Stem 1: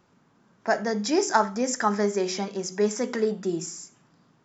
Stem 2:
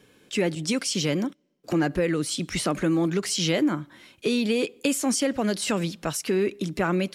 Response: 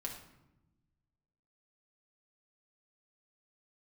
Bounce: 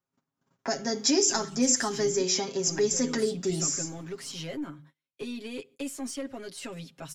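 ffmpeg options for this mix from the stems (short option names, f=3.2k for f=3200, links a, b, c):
-filter_complex "[0:a]crystalizer=i=1:c=0,volume=1.5dB[a];[1:a]bandreject=f=50.58:t=h:w=4,bandreject=f=101.16:t=h:w=4,bandreject=f=151.74:t=h:w=4,aeval=exprs='(tanh(5.62*val(0)+0.25)-tanh(0.25))/5.62':c=same,adelay=950,volume=-13.5dB[b];[a][b]amix=inputs=2:normalize=0,agate=range=-30dB:threshold=-56dB:ratio=16:detection=peak,aecho=1:1:7.4:0.82,acrossover=split=310|3000[c][d][e];[d]acompressor=threshold=-32dB:ratio=6[f];[c][f][e]amix=inputs=3:normalize=0"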